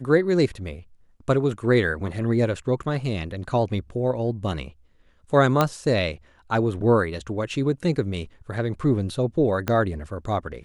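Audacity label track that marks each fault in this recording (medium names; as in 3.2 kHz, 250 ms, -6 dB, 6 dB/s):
5.610000	5.610000	pop -6 dBFS
9.680000	9.680000	pop -10 dBFS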